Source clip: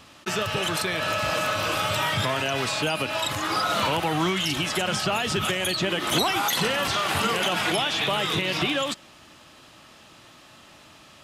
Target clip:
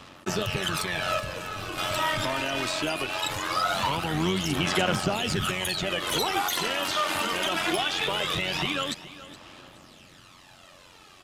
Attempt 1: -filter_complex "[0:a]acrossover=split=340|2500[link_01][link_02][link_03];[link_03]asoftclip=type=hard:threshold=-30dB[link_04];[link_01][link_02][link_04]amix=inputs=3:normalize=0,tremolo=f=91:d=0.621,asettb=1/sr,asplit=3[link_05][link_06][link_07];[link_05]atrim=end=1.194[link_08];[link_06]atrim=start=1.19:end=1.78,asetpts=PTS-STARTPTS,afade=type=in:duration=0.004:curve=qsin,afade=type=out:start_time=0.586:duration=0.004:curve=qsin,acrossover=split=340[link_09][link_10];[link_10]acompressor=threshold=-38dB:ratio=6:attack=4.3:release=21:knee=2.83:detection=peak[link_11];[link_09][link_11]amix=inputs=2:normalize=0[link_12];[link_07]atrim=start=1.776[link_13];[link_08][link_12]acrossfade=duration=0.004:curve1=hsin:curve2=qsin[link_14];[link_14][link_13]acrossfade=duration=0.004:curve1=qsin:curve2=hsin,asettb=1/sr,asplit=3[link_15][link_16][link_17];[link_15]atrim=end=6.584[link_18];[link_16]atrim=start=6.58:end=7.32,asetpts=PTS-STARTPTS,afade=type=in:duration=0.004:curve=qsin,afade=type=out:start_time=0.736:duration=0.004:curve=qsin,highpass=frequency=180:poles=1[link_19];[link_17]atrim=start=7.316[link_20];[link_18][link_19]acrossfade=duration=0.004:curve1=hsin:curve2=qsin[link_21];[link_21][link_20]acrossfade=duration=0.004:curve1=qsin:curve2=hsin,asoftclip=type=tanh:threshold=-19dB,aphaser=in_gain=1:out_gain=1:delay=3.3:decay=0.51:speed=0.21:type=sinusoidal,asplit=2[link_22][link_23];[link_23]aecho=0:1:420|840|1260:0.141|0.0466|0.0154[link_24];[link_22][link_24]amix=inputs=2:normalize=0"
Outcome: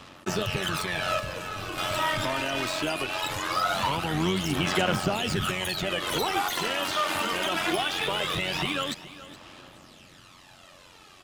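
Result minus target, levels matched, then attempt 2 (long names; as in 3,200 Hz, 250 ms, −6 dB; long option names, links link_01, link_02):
hard clipping: distortion +30 dB
-filter_complex "[0:a]acrossover=split=340|2500[link_01][link_02][link_03];[link_03]asoftclip=type=hard:threshold=-18dB[link_04];[link_01][link_02][link_04]amix=inputs=3:normalize=0,tremolo=f=91:d=0.621,asettb=1/sr,asplit=3[link_05][link_06][link_07];[link_05]atrim=end=1.194[link_08];[link_06]atrim=start=1.19:end=1.78,asetpts=PTS-STARTPTS,afade=type=in:duration=0.004:curve=qsin,afade=type=out:start_time=0.586:duration=0.004:curve=qsin,acrossover=split=340[link_09][link_10];[link_10]acompressor=threshold=-38dB:ratio=6:attack=4.3:release=21:knee=2.83:detection=peak[link_11];[link_09][link_11]amix=inputs=2:normalize=0[link_12];[link_07]atrim=start=1.776[link_13];[link_08][link_12]acrossfade=duration=0.004:curve1=hsin:curve2=qsin[link_14];[link_14][link_13]acrossfade=duration=0.004:curve1=qsin:curve2=hsin,asettb=1/sr,asplit=3[link_15][link_16][link_17];[link_15]atrim=end=6.584[link_18];[link_16]atrim=start=6.58:end=7.32,asetpts=PTS-STARTPTS,afade=type=in:duration=0.004:curve=qsin,afade=type=out:start_time=0.736:duration=0.004:curve=qsin,highpass=frequency=180:poles=1[link_19];[link_17]atrim=start=7.316[link_20];[link_18][link_19]acrossfade=duration=0.004:curve1=hsin:curve2=qsin[link_21];[link_21][link_20]acrossfade=duration=0.004:curve1=qsin:curve2=hsin,asoftclip=type=tanh:threshold=-19dB,aphaser=in_gain=1:out_gain=1:delay=3.3:decay=0.51:speed=0.21:type=sinusoidal,asplit=2[link_22][link_23];[link_23]aecho=0:1:420|840|1260:0.141|0.0466|0.0154[link_24];[link_22][link_24]amix=inputs=2:normalize=0"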